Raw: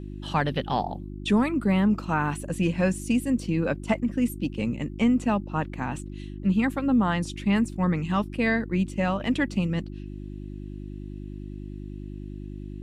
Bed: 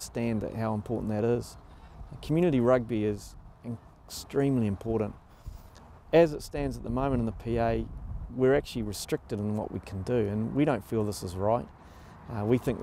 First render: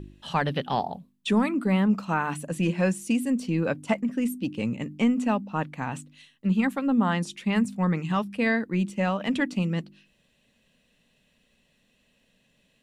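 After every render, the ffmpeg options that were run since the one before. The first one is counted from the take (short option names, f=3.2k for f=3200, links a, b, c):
-af "bandreject=f=50:t=h:w=4,bandreject=f=100:t=h:w=4,bandreject=f=150:t=h:w=4,bandreject=f=200:t=h:w=4,bandreject=f=250:t=h:w=4,bandreject=f=300:t=h:w=4,bandreject=f=350:t=h:w=4"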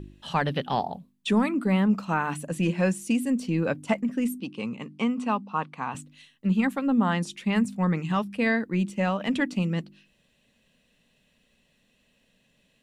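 -filter_complex "[0:a]asettb=1/sr,asplit=3[a][b][c];[a]atrim=end=4.404[d];[b]atrim=start=4.4:end=5.95,asetpts=PTS-STARTPTS,afade=t=in:d=0.004:c=qsin,afade=t=out:st=1.546:d=0.004:c=qsin,highpass=210,equalizer=f=300:t=q:w=4:g=-7,equalizer=f=590:t=q:w=4:g=-6,equalizer=f=1.1k:t=q:w=4:g=8,equalizer=f=1.8k:t=q:w=4:g=-6,equalizer=f=7.1k:t=q:w=4:g=-9,lowpass=f=9.4k:w=0.5412,lowpass=f=9.4k:w=1.3066[e];[c]atrim=start=5.946[f];[d][e]acrossfade=d=0.004:c1=hsin:c2=qsin[g];[g][f]acrossfade=d=0.004:c1=qsin:c2=hsin"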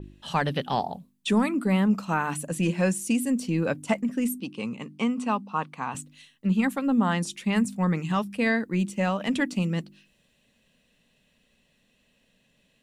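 -af "adynamicequalizer=threshold=0.00398:dfrequency=5200:dqfactor=0.7:tfrequency=5200:tqfactor=0.7:attack=5:release=100:ratio=0.375:range=3.5:mode=boostabove:tftype=highshelf"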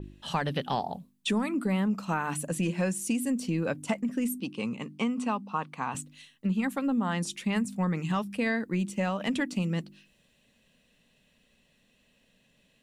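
-af "acompressor=threshold=-26dB:ratio=3"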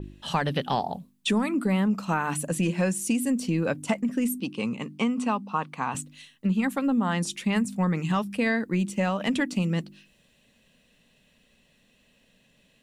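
-af "volume=3.5dB"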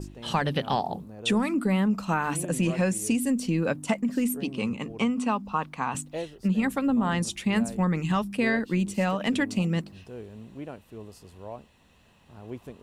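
-filter_complex "[1:a]volume=-13.5dB[a];[0:a][a]amix=inputs=2:normalize=0"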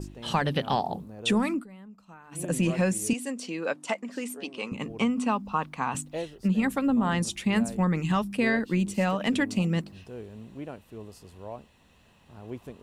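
-filter_complex "[0:a]asettb=1/sr,asplit=3[a][b][c];[a]atrim=end=3.134[d];[b]atrim=start=3.13:end=4.72,asetpts=PTS-STARTPTS,afade=t=in:d=0.004:c=qsin,afade=t=out:st=1.586:d=0.004:c=qsin,highpass=440,lowpass=7.7k[e];[c]atrim=start=4.716[f];[d][e]acrossfade=d=0.004:c1=hsin:c2=qsin[g];[g][f]acrossfade=d=0.004:c1=qsin:c2=hsin,asplit=3[h][i][j];[h]atrim=end=1.66,asetpts=PTS-STARTPTS,afade=t=out:st=1.51:d=0.15:silence=0.0668344[k];[i]atrim=start=1.66:end=2.31,asetpts=PTS-STARTPTS,volume=-23.5dB[l];[j]atrim=start=2.31,asetpts=PTS-STARTPTS,afade=t=in:d=0.15:silence=0.0668344[m];[k][l][m]concat=n=3:v=0:a=1"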